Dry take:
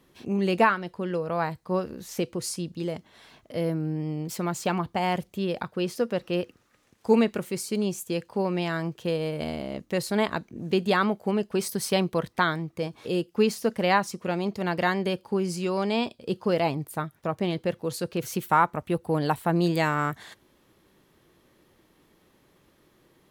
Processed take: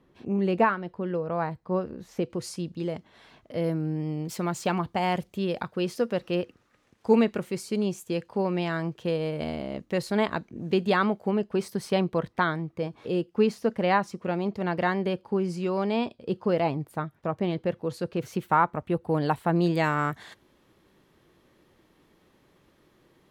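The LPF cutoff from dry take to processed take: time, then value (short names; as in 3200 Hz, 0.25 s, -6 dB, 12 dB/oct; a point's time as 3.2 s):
LPF 6 dB/oct
1300 Hz
from 2.3 s 3300 Hz
from 3.64 s 7500 Hz
from 6.35 s 3800 Hz
from 11.28 s 2000 Hz
from 19.09 s 3300 Hz
from 19.84 s 5700 Hz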